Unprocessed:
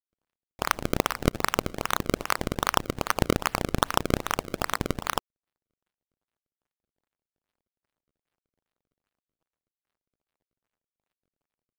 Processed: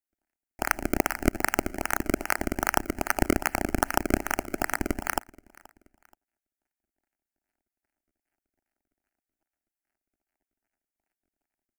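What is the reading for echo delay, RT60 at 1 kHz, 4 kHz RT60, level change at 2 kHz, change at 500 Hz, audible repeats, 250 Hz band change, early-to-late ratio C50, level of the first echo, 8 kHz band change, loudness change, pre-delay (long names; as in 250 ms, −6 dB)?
478 ms, no reverb audible, no reverb audible, +2.5 dB, −1.0 dB, 2, +1.5 dB, no reverb audible, −24.0 dB, +1.0 dB, 0.0 dB, no reverb audible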